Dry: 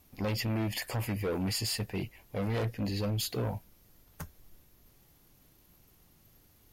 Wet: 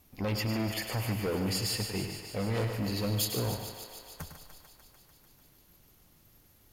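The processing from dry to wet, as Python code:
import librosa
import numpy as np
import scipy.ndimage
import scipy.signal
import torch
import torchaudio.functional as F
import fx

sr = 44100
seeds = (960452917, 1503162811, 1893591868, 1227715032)

y = fx.high_shelf(x, sr, hz=8000.0, db=10.0, at=(2.73, 3.25))
y = fx.echo_thinned(y, sr, ms=148, feedback_pct=78, hz=290.0, wet_db=-9.5)
y = fx.echo_crushed(y, sr, ms=104, feedback_pct=35, bits=10, wet_db=-8.5)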